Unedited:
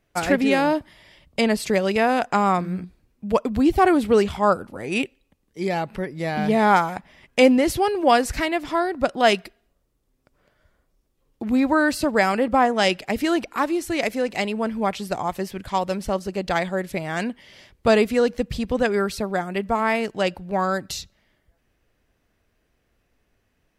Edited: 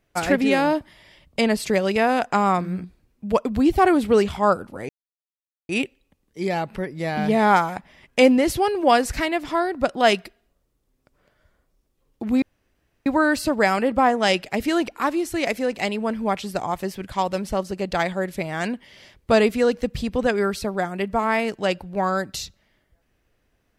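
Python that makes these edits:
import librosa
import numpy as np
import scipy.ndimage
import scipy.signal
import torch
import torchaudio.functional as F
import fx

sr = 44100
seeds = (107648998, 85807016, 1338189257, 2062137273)

y = fx.edit(x, sr, fx.insert_silence(at_s=4.89, length_s=0.8),
    fx.insert_room_tone(at_s=11.62, length_s=0.64), tone=tone)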